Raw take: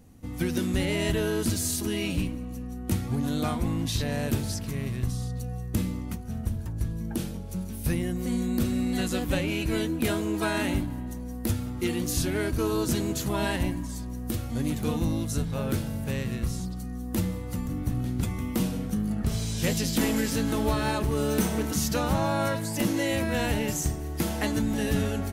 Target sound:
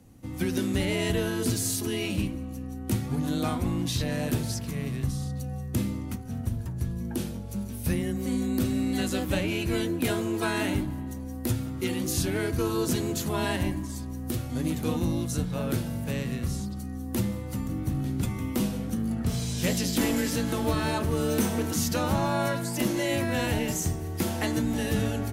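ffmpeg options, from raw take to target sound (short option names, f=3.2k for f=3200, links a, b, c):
-af "afreqshift=16,bandreject=f=73.51:t=h:w=4,bandreject=f=147.02:t=h:w=4,bandreject=f=220.53:t=h:w=4,bandreject=f=294.04:t=h:w=4,bandreject=f=367.55:t=h:w=4,bandreject=f=441.06:t=h:w=4,bandreject=f=514.57:t=h:w=4,bandreject=f=588.08:t=h:w=4,bandreject=f=661.59:t=h:w=4,bandreject=f=735.1:t=h:w=4,bandreject=f=808.61:t=h:w=4,bandreject=f=882.12:t=h:w=4,bandreject=f=955.63:t=h:w=4,bandreject=f=1.02914k:t=h:w=4,bandreject=f=1.10265k:t=h:w=4,bandreject=f=1.17616k:t=h:w=4,bandreject=f=1.24967k:t=h:w=4,bandreject=f=1.32318k:t=h:w=4,bandreject=f=1.39669k:t=h:w=4,bandreject=f=1.4702k:t=h:w=4,bandreject=f=1.54371k:t=h:w=4,bandreject=f=1.61722k:t=h:w=4,bandreject=f=1.69073k:t=h:w=4,bandreject=f=1.76424k:t=h:w=4,bandreject=f=1.83775k:t=h:w=4,bandreject=f=1.91126k:t=h:w=4,bandreject=f=1.98477k:t=h:w=4,bandreject=f=2.05828k:t=h:w=4,bandreject=f=2.13179k:t=h:w=4"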